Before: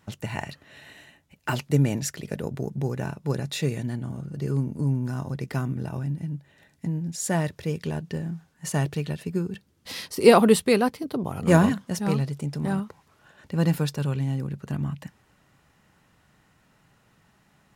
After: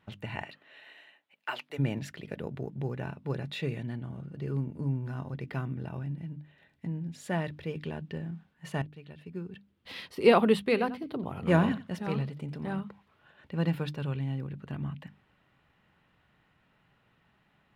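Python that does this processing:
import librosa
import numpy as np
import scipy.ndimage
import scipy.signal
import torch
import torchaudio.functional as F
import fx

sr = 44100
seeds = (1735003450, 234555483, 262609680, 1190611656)

y = fx.highpass(x, sr, hz=fx.line((0.42, 310.0), (1.78, 710.0)), slope=12, at=(0.42, 1.78), fade=0.02)
y = fx.echo_single(y, sr, ms=89, db=-15.5, at=(10.64, 12.76))
y = fx.edit(y, sr, fx.fade_in_from(start_s=8.82, length_s=1.16, floor_db=-20.5), tone=tone)
y = fx.high_shelf_res(y, sr, hz=4500.0, db=-12.0, q=1.5)
y = fx.hum_notches(y, sr, base_hz=50, count=6)
y = F.gain(torch.from_numpy(y), -6.0).numpy()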